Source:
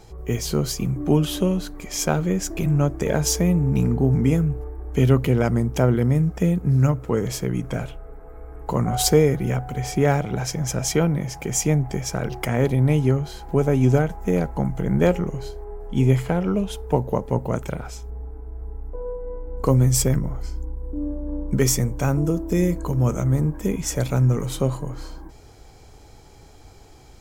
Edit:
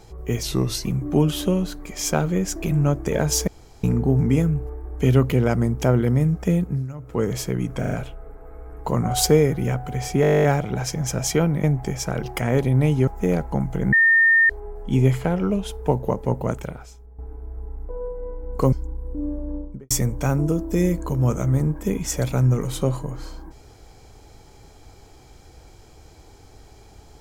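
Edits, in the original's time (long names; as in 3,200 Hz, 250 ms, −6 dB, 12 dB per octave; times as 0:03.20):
0:00.43–0:00.80: play speed 87%
0:03.42–0:03.78: fill with room tone
0:06.57–0:07.16: duck −17 dB, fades 0.26 s
0:07.74: stutter 0.04 s, 4 plays
0:10.04: stutter 0.02 s, 12 plays
0:11.24–0:11.70: remove
0:13.14–0:14.12: remove
0:14.97–0:15.54: beep over 1,820 Hz −12 dBFS
0:17.57–0:18.23: fade out quadratic, to −12.5 dB
0:19.77–0:20.51: remove
0:21.21–0:21.69: fade out and dull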